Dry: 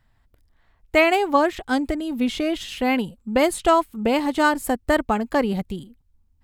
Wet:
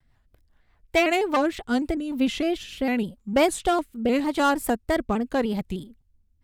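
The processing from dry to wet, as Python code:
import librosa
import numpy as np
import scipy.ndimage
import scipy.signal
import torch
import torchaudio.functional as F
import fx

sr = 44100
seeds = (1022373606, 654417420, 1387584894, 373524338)

y = np.clip(10.0 ** (12.0 / 20.0) * x, -1.0, 1.0) / 10.0 ** (12.0 / 20.0)
y = fx.rotary_switch(y, sr, hz=5.0, then_hz=0.85, switch_at_s=1.4)
y = fx.vibrato_shape(y, sr, shape='square', rate_hz=3.3, depth_cents=100.0)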